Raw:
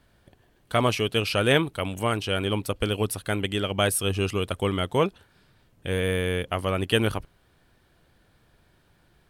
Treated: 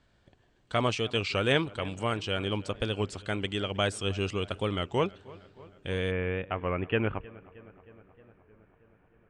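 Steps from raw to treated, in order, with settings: elliptic low-pass 7800 Hz, stop band 60 dB, from 6.1 s 2600 Hz; darkening echo 0.313 s, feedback 71%, low-pass 3200 Hz, level -21 dB; record warp 33 1/3 rpm, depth 100 cents; gain -4 dB

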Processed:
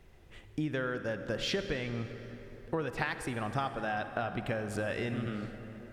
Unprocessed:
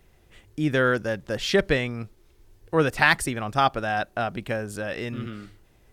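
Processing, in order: high shelf 6600 Hz -9.5 dB; compressor 12:1, threshold -30 dBFS, peak gain reduction 17 dB; reverb RT60 4.2 s, pre-delay 43 ms, DRR 8.5 dB

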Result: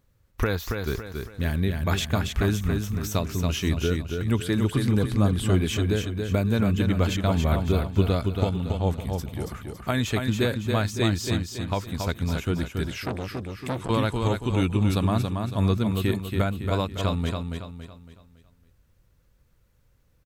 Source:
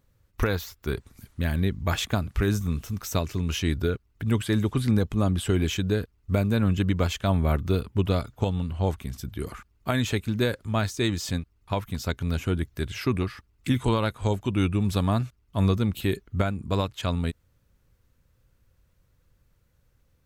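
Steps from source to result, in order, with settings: feedback echo 0.279 s, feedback 40%, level -5 dB; 13.02–13.9 core saturation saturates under 970 Hz

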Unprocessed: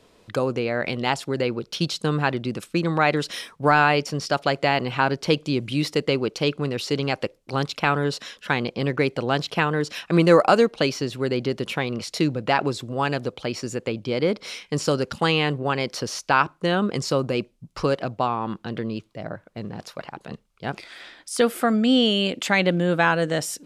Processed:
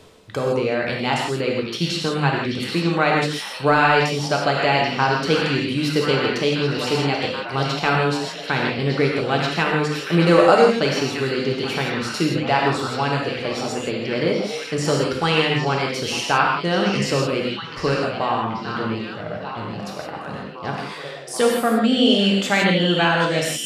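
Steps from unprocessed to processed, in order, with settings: delay with a stepping band-pass 0.783 s, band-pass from 3600 Hz, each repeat -0.7 oct, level -4 dB; non-linear reverb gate 0.19 s flat, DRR -1.5 dB; reverse; upward compressor, threshold -25 dBFS; reverse; gain -1 dB

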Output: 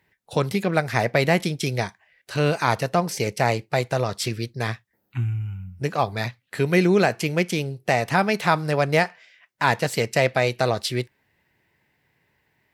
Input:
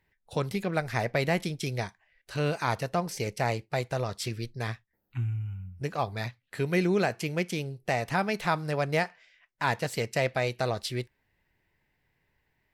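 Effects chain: HPF 100 Hz; gain +7.5 dB

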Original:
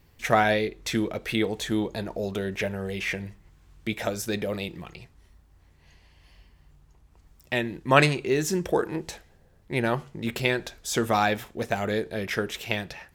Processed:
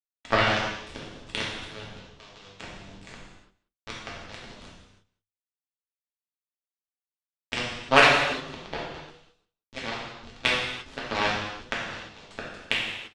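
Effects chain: level-crossing sampler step -21.5 dBFS; notches 50/100/150 Hz; gate -38 dBFS, range -16 dB; resonant high shelf 4900 Hz -13.5 dB, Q 3; notch 490 Hz, Q 14; in parallel at +2 dB: compressor, threshold -32 dBFS, peak gain reduction 20 dB; on the sum: added harmonics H 7 -16 dB, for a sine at 1 dBFS; air absorption 100 m; on a send: echo 0.186 s -21 dB; on the sum: non-linear reverb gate 0.37 s falling, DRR -5.5 dB; gain -2.5 dB

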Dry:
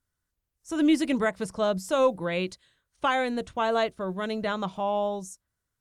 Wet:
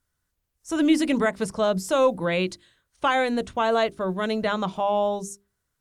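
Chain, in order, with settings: notches 50/100/150/200/250/300/350/400 Hz; in parallel at -2 dB: limiter -21.5 dBFS, peak gain reduction 10 dB

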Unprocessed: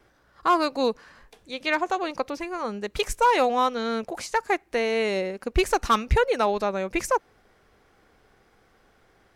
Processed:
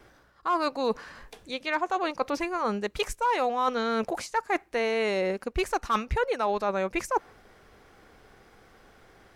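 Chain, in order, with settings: dynamic EQ 1100 Hz, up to +5 dB, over -35 dBFS, Q 0.82; reverse; compressor 5:1, threshold -30 dBFS, peak gain reduction 16.5 dB; reverse; gain +5 dB

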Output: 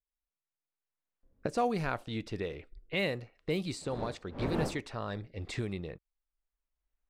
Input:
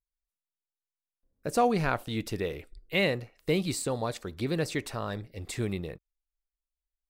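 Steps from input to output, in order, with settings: recorder AGC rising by 10 dB/s; 3.8–4.8 wind noise 470 Hz -33 dBFS; low-pass opened by the level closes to 2000 Hz, open at -21.5 dBFS; gain -5.5 dB

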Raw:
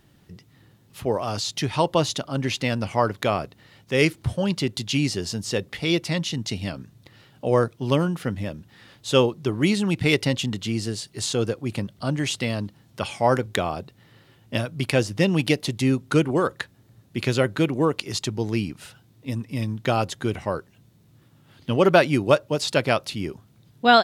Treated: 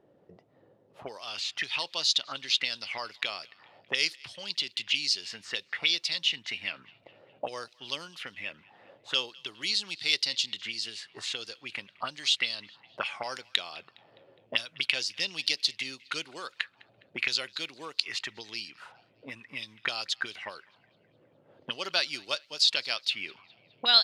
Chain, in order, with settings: auto-wah 500–4500 Hz, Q 3.7, up, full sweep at -21 dBFS; narrowing echo 0.206 s, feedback 57%, band-pass 2400 Hz, level -23.5 dB; gain +8.5 dB

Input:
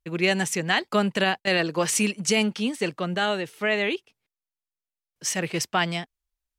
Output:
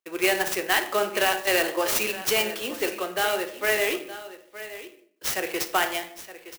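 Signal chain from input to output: HPF 350 Hz 24 dB/oct; echo 0.918 s -14.5 dB; on a send at -5.5 dB: reverb RT60 0.60 s, pre-delay 3 ms; on the sum: clock jitter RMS 0.035 ms

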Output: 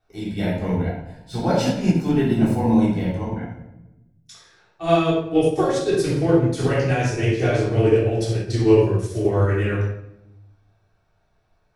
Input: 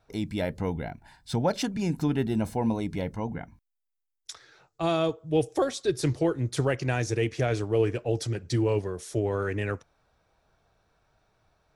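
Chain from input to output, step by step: shoebox room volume 440 m³, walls mixed, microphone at 3.5 m; upward expander 1.5:1, over -29 dBFS

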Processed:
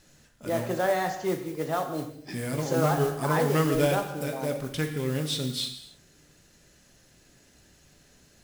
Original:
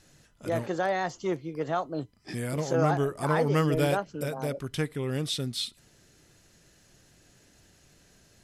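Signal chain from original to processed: modulation noise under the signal 18 dB; non-linear reverb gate 0.32 s falling, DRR 5 dB

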